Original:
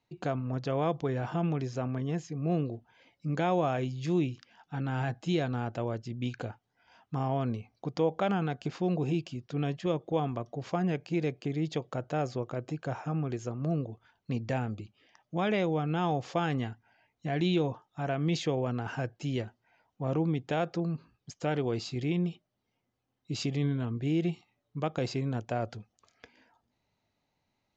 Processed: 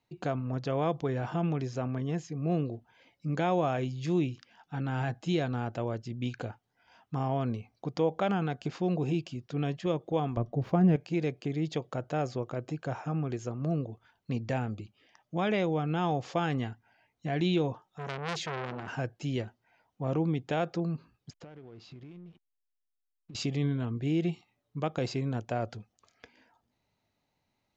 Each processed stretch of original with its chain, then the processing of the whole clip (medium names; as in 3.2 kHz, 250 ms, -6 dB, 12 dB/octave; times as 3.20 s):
10.37–10.96 s: median filter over 5 samples + tilt EQ -3 dB/octave
17.85–18.88 s: comb 5.3 ms, depth 51% + transformer saturation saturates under 2.3 kHz
21.30–23.35 s: compression 20:1, threshold -43 dBFS + hysteresis with a dead band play -55.5 dBFS + distance through air 140 m
whole clip: none